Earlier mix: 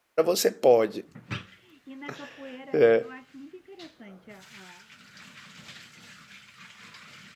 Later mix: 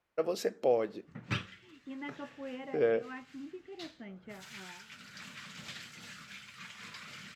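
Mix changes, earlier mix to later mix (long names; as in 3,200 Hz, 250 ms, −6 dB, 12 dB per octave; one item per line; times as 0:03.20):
first voice −9.0 dB
background: remove low-pass filter 2,900 Hz 6 dB per octave
master: add low-pass filter 3,300 Hz 6 dB per octave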